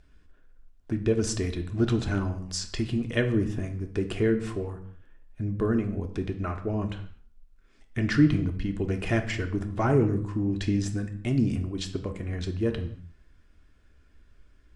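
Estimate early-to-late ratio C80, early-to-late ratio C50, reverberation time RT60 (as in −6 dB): 14.5 dB, 11.0 dB, non-exponential decay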